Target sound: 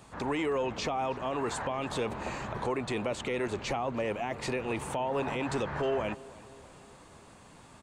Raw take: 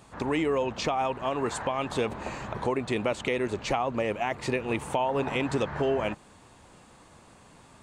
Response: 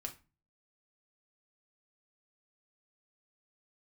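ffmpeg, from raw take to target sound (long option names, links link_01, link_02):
-filter_complex "[0:a]acrossover=split=490[link_01][link_02];[link_01]asoftclip=type=tanh:threshold=-31.5dB[link_03];[link_02]alimiter=level_in=2.5dB:limit=-24dB:level=0:latency=1:release=14,volume=-2.5dB[link_04];[link_03][link_04]amix=inputs=2:normalize=0,asplit=2[link_05][link_06];[link_06]adelay=319,lowpass=frequency=3000:poles=1,volume=-20dB,asplit=2[link_07][link_08];[link_08]adelay=319,lowpass=frequency=3000:poles=1,volume=0.55,asplit=2[link_09][link_10];[link_10]adelay=319,lowpass=frequency=3000:poles=1,volume=0.55,asplit=2[link_11][link_12];[link_12]adelay=319,lowpass=frequency=3000:poles=1,volume=0.55[link_13];[link_05][link_07][link_09][link_11][link_13]amix=inputs=5:normalize=0"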